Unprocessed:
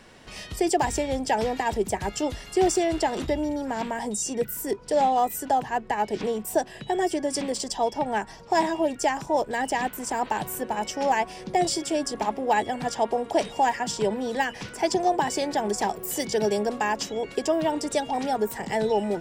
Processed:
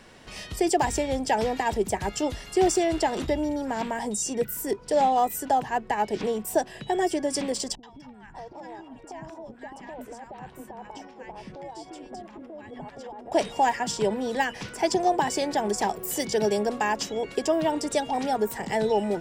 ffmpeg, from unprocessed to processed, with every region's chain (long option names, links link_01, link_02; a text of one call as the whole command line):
ffmpeg -i in.wav -filter_complex "[0:a]asettb=1/sr,asplit=3[link_01][link_02][link_03];[link_01]atrim=end=7.754[link_04];[link_02]atrim=start=7.75:end=13.32,asetpts=PTS-STARTPTS,afade=type=in:duration=0.004:curve=qsin,afade=type=out:start_time=5.566:duration=0.004:curve=qsin,acompressor=threshold=-33dB:ratio=12:attack=3.2:release=140:knee=1:detection=peak,lowpass=frequency=1500:poles=1,acrossover=split=340|1100[link_05][link_06][link_07];[link_07]adelay=80[link_08];[link_06]adelay=590[link_09];[link_05][link_09][link_08]amix=inputs=3:normalize=0,atrim=end_sample=245637[link_10];[link_03]atrim=start=13.316[link_11];[link_04][link_10]acrossfade=duration=0.004:curve1=hsin:curve2=qsin[link_12];[link_12][link_11]acrossfade=duration=0.004:curve1=qsin:curve2=hsin" out.wav